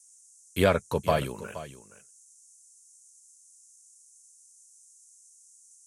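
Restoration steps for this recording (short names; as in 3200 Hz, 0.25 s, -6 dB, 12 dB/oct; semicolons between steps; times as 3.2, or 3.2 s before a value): noise print and reduce 18 dB; inverse comb 0.472 s -14.5 dB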